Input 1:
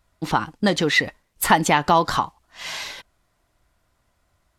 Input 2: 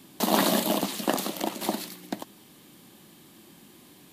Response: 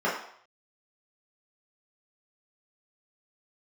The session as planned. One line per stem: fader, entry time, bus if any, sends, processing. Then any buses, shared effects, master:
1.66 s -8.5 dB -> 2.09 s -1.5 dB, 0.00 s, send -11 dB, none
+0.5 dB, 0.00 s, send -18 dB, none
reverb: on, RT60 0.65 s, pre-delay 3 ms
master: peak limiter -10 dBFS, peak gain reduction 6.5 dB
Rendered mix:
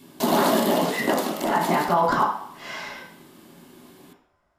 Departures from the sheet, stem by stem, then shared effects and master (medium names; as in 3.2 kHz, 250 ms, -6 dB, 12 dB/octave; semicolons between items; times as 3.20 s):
stem 1 -8.5 dB -> -17.0 dB; reverb return +7.5 dB